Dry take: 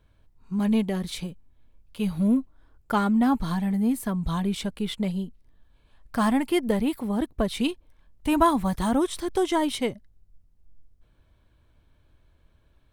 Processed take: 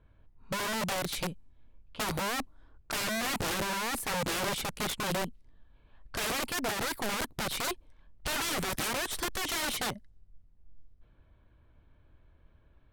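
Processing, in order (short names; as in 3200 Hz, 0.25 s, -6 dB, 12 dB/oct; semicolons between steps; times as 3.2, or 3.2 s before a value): limiter -17.5 dBFS, peak gain reduction 9 dB; wrapped overs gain 27 dB; low-pass opened by the level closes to 2100 Hz, open at -34.5 dBFS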